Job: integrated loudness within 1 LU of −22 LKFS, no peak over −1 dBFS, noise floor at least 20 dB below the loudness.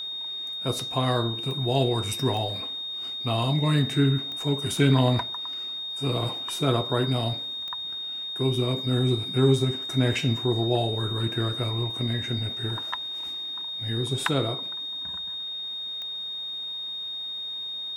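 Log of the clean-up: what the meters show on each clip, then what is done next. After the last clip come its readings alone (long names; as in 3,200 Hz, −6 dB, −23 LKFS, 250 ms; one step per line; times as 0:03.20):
number of clicks 5; interfering tone 3,700 Hz; level of the tone −31 dBFS; integrated loudness −26.5 LKFS; sample peak −8.0 dBFS; target loudness −22.0 LKFS
→ click removal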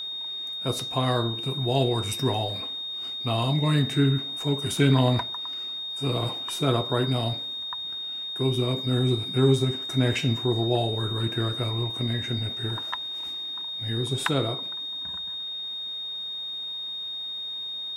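number of clicks 0; interfering tone 3,700 Hz; level of the tone −31 dBFS
→ notch filter 3,700 Hz, Q 30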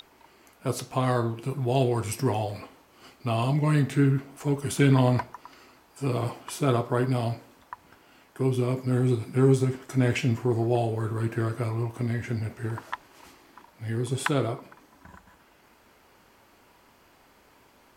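interfering tone none found; integrated loudness −26.5 LKFS; sample peak −8.5 dBFS; target loudness −22.0 LKFS
→ level +4.5 dB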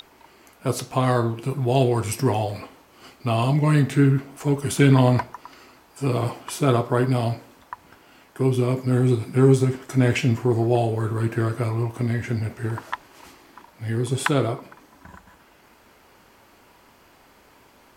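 integrated loudness −22.0 LKFS; sample peak −4.0 dBFS; background noise floor −55 dBFS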